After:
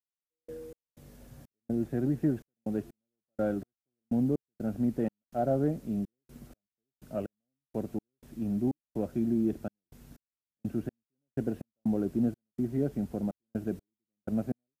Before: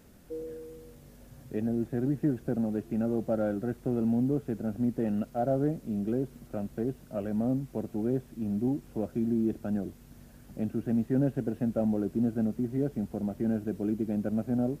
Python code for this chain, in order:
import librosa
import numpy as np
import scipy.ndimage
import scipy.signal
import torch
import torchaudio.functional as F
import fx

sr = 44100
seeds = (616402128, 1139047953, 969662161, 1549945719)

y = fx.step_gate(x, sr, bpm=62, pattern='..x.xx.xxx.x..x', floor_db=-60.0, edge_ms=4.5)